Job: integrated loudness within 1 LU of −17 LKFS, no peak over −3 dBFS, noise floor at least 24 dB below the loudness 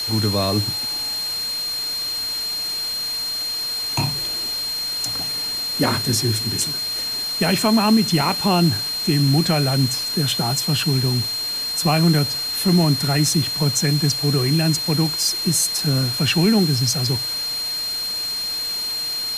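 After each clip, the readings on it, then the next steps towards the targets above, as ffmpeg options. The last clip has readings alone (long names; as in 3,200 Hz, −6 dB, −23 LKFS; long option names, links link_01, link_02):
interfering tone 4,200 Hz; level of the tone −23 dBFS; background noise floor −26 dBFS; target noise floor −44 dBFS; integrated loudness −19.5 LKFS; sample peak −4.5 dBFS; target loudness −17.0 LKFS
→ -af "bandreject=frequency=4200:width=30"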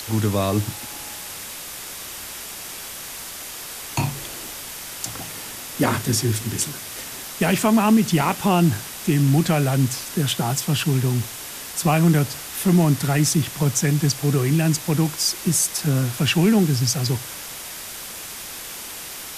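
interfering tone none found; background noise floor −35 dBFS; target noise floor −46 dBFS
→ -af "afftdn=noise_reduction=11:noise_floor=-35"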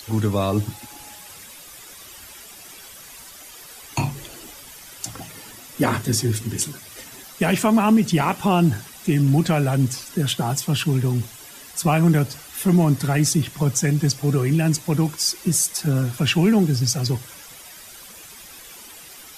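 background noise floor −42 dBFS; target noise floor −45 dBFS
→ -af "afftdn=noise_reduction=6:noise_floor=-42"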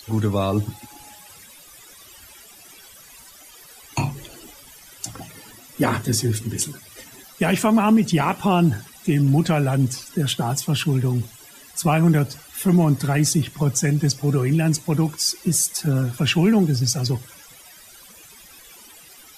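background noise floor −46 dBFS; integrated loudness −21.0 LKFS; sample peak −5.5 dBFS; target loudness −17.0 LKFS
→ -af "volume=4dB,alimiter=limit=-3dB:level=0:latency=1"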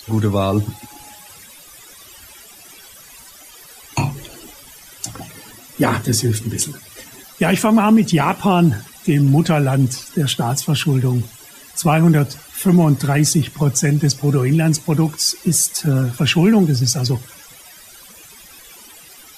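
integrated loudness −17.0 LKFS; sample peak −3.0 dBFS; background noise floor −42 dBFS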